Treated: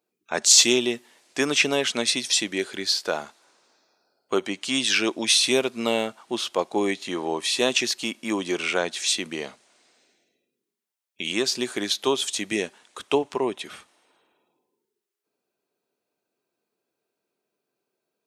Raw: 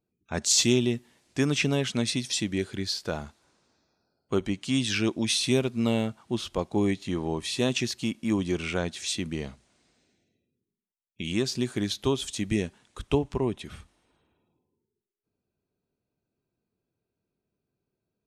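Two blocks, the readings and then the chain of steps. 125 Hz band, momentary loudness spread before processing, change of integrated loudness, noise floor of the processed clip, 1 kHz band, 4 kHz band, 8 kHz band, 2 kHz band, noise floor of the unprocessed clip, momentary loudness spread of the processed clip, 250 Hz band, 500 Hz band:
-12.5 dB, 11 LU, +4.5 dB, -83 dBFS, +7.0 dB, +7.5 dB, +7.5 dB, +7.5 dB, under -85 dBFS, 12 LU, -1.5 dB, +4.0 dB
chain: high-pass 440 Hz 12 dB/octave; trim +7.5 dB

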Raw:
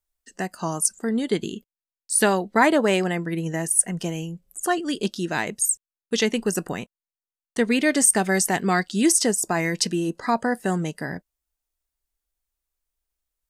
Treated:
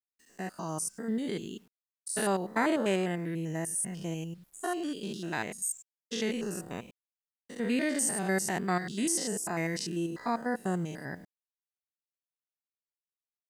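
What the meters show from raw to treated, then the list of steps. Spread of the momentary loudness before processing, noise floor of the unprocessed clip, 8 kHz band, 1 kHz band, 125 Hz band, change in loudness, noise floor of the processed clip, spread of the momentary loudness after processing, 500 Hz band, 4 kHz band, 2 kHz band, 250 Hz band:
15 LU, under -85 dBFS, -11.0 dB, -9.5 dB, -7.5 dB, -10.0 dB, under -85 dBFS, 13 LU, -9.5 dB, -10.5 dB, -10.0 dB, -8.5 dB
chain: spectrogram pixelated in time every 100 ms; bit crusher 10-bit; trim -6.5 dB

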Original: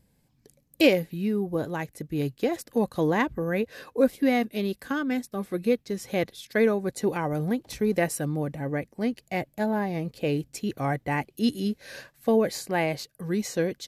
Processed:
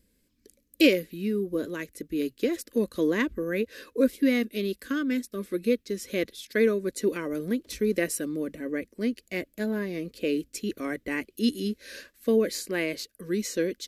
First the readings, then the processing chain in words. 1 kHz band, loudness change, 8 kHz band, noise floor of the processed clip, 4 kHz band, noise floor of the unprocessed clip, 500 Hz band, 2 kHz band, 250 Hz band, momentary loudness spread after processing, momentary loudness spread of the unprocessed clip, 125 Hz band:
-12.0 dB, -1.0 dB, +1.5 dB, -70 dBFS, +1.0 dB, -68 dBFS, -1.0 dB, -0.5 dB, -0.5 dB, 9 LU, 8 LU, -8.5 dB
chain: static phaser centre 330 Hz, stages 4; trim +1.5 dB

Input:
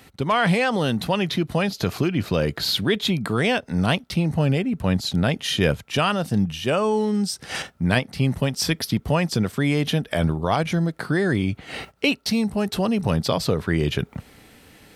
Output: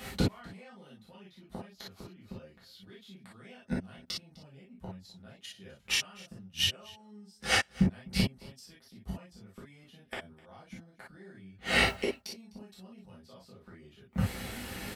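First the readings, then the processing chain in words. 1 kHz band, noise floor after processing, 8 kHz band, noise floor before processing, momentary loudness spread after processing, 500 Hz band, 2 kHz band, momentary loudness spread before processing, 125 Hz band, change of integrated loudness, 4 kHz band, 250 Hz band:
-16.0 dB, -62 dBFS, -8.0 dB, -53 dBFS, 23 LU, -18.5 dB, -9.0 dB, 4 LU, -16.0 dB, -9.5 dB, -8.5 dB, -15.5 dB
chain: inverted gate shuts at -19 dBFS, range -40 dB; delay 254 ms -22.5 dB; gated-style reverb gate 80 ms flat, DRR -6.5 dB; trim +1.5 dB

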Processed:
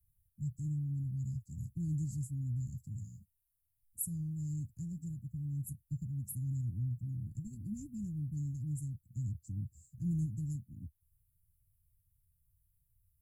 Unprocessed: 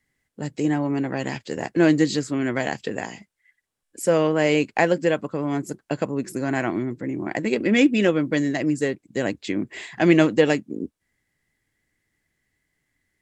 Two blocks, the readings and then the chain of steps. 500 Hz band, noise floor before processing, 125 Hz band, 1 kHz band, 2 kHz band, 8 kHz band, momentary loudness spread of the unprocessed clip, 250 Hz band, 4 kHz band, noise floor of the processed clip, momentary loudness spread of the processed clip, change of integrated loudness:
under -40 dB, -78 dBFS, -4.5 dB, under -40 dB, under -40 dB, -10.0 dB, 12 LU, -20.5 dB, under -40 dB, -80 dBFS, 7 LU, -17.0 dB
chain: inverse Chebyshev band-stop 420–3700 Hz, stop band 70 dB; trim +8.5 dB

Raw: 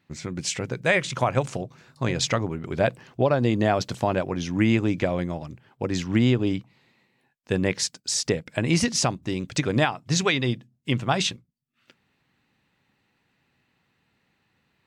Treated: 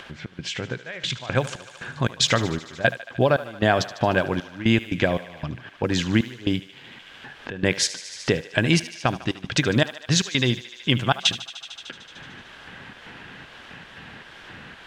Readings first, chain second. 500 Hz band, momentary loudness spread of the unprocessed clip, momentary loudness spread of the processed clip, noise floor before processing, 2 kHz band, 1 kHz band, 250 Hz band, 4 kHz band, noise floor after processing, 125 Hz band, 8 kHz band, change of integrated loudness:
+0.5 dB, 9 LU, 20 LU, -71 dBFS, +3.5 dB, +0.5 dB, 0.0 dB, +5.0 dB, -47 dBFS, +0.5 dB, -1.0 dB, +1.0 dB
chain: fade-in on the opening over 1.68 s; trance gate "xx.xxx..x.xx.." 116 bpm -24 dB; in parallel at +2 dB: compression, threshold -33 dBFS, peak gain reduction 16 dB; on the sum: word length cut 10-bit, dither triangular; peaking EQ 3.2 kHz +7.5 dB 0.54 oct; level-controlled noise filter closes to 2.2 kHz, open at -18 dBFS; peaking EQ 1.6 kHz +10 dB 0.21 oct; thinning echo 75 ms, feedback 71%, high-pass 470 Hz, level -14.5 dB; upward compressor, threshold -25 dBFS

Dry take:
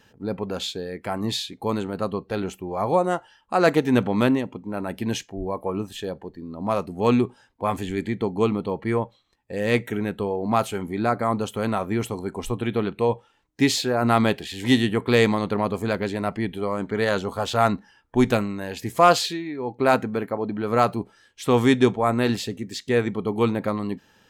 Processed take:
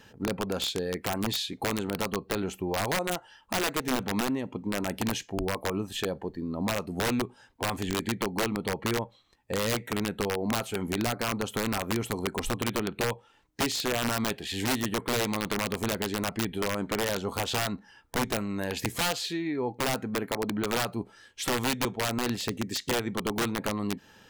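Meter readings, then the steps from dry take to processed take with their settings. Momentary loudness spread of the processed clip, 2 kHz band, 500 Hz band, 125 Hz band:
5 LU, -3.0 dB, -8.5 dB, -6.5 dB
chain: compression 4:1, threshold -30 dBFS, peak gain reduction 16.5 dB; integer overflow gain 24 dB; trim +3 dB

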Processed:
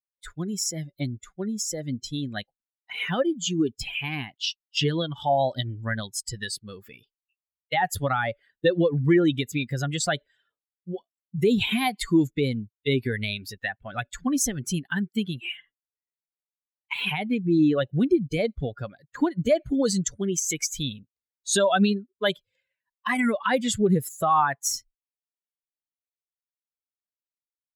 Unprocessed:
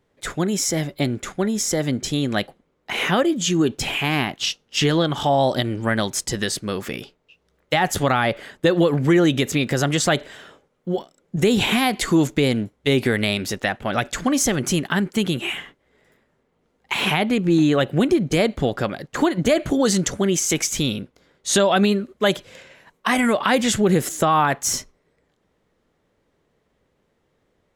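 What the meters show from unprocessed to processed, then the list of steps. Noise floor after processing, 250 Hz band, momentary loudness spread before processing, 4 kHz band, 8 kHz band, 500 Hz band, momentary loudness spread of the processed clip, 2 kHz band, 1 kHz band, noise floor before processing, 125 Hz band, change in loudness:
under -85 dBFS, -5.0 dB, 9 LU, -6.5 dB, -5.5 dB, -5.5 dB, 12 LU, -6.0 dB, -5.0 dB, -68 dBFS, -5.0 dB, -5.0 dB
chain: expander on every frequency bin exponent 2

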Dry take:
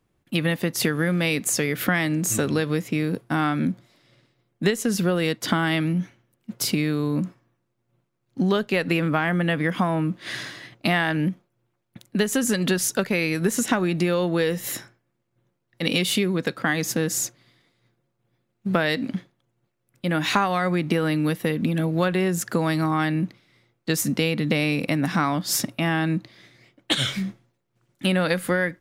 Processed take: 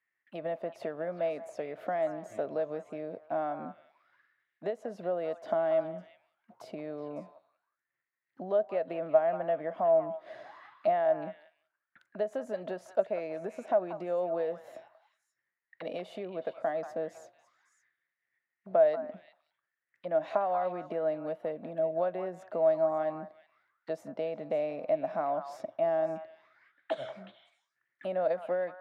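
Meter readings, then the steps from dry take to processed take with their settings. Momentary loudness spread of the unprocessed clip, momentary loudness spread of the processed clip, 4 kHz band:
7 LU, 16 LU, under -25 dB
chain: auto-wah 640–1900 Hz, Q 14, down, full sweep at -28.5 dBFS; repeats whose band climbs or falls 185 ms, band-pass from 1.1 kHz, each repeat 1.4 oct, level -6.5 dB; trim +9 dB

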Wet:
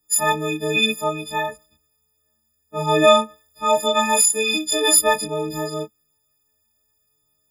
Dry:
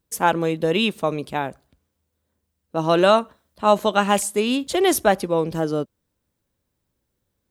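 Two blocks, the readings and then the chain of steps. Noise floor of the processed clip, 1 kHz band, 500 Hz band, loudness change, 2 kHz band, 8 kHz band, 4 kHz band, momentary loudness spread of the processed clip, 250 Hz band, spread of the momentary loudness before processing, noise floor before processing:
-69 dBFS, 0.0 dB, -0.5 dB, +2.0 dB, +3.5 dB, +11.5 dB, +6.0 dB, 14 LU, -4.0 dB, 10 LU, -77 dBFS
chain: partials quantised in pitch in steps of 6 st; chorus voices 4, 0.43 Hz, delay 23 ms, depth 2.9 ms

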